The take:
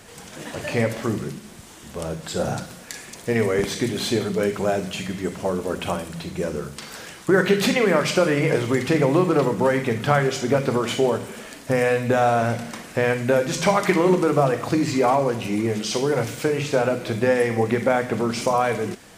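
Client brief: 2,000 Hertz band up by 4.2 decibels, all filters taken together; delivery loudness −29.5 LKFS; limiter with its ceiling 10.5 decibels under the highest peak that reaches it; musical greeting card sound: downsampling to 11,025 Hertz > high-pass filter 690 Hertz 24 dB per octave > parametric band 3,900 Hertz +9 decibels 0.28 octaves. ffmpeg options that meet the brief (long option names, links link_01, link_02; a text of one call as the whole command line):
ffmpeg -i in.wav -af "equalizer=frequency=2000:width_type=o:gain=5,alimiter=limit=-12.5dB:level=0:latency=1,aresample=11025,aresample=44100,highpass=frequency=690:width=0.5412,highpass=frequency=690:width=1.3066,equalizer=frequency=3900:width_type=o:width=0.28:gain=9,volume=-2dB" out.wav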